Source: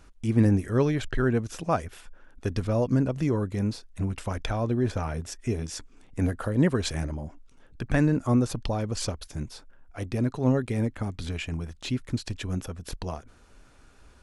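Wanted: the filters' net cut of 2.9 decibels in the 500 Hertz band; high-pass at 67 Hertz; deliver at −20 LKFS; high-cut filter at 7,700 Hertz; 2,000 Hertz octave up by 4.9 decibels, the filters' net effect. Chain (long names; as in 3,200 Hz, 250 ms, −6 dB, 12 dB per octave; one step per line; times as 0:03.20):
high-pass filter 67 Hz
low-pass filter 7,700 Hz
parametric band 500 Hz −4 dB
parametric band 2,000 Hz +6.5 dB
level +8.5 dB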